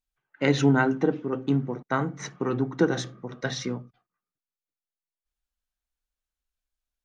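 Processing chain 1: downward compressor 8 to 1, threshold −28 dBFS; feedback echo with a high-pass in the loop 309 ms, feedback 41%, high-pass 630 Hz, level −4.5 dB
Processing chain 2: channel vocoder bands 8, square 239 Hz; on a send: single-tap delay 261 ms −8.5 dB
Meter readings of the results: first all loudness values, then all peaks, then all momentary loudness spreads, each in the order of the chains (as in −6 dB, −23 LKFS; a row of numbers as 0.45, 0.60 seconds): −34.5, −28.0 LKFS; −16.5, −13.0 dBFS; 9, 16 LU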